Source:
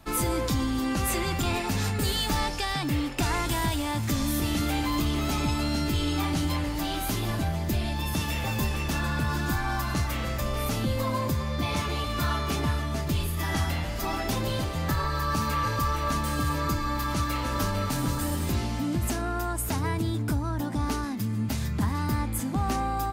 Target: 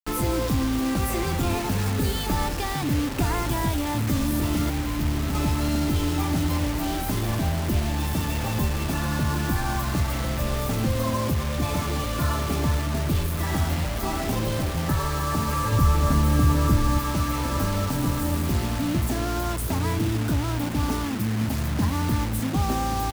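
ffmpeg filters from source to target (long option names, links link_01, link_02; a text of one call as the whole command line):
ffmpeg -i in.wav -filter_complex "[0:a]equalizer=frequency=5800:width=0.3:gain=-10,asplit=2[link_01][link_02];[link_02]adelay=1120,lowpass=frequency=1700:poles=1,volume=-13dB,asplit=2[link_03][link_04];[link_04]adelay=1120,lowpass=frequency=1700:poles=1,volume=0.52,asplit=2[link_05][link_06];[link_06]adelay=1120,lowpass=frequency=1700:poles=1,volume=0.52,asplit=2[link_07][link_08];[link_08]adelay=1120,lowpass=frequency=1700:poles=1,volume=0.52,asplit=2[link_09][link_10];[link_10]adelay=1120,lowpass=frequency=1700:poles=1,volume=0.52[link_11];[link_01][link_03][link_05][link_07][link_09][link_11]amix=inputs=6:normalize=0,asettb=1/sr,asplit=3[link_12][link_13][link_14];[link_12]atrim=end=4.694[link_15];[link_13]atrim=start=4.69:end=5.35,asetpts=PTS-STARTPTS,afade=type=in:duration=0.004:curve=qsin,afade=type=out:start_time=0.656:duration=0.004:curve=qsin,acrossover=split=280[link_16][link_17];[link_17]acompressor=threshold=-43dB:ratio=2.5[link_18];[link_16][link_18]amix=inputs=2:normalize=0[link_19];[link_14]atrim=start=5.346[link_20];[link_15][link_19]acrossfade=duration=0.004:curve1=hsin:curve2=qsin[link_21];[link_21][link_20]acrossfade=duration=0.004:curve1=qsin:curve2=hsin,asettb=1/sr,asplit=3[link_22][link_23][link_24];[link_22]atrim=end=15.724[link_25];[link_23]atrim=start=15.72:end=16.99,asetpts=PTS-STARTPTS,afade=type=in:duration=0.004:curve=qsin,afade=type=out:start_time=1.266:duration=0.004:curve=qsin,lowshelf=frequency=300:gain=7.5[link_26];[link_24]atrim=start=16.986[link_27];[link_25][link_26]acrossfade=duration=0.004:curve1=hsin:curve2=qsin[link_28];[link_28][link_27]acrossfade=duration=0.004:curve1=qsin:curve2=hsin,acontrast=66,acrusher=bits=4:mix=0:aa=0.000001,volume=-3dB" out.wav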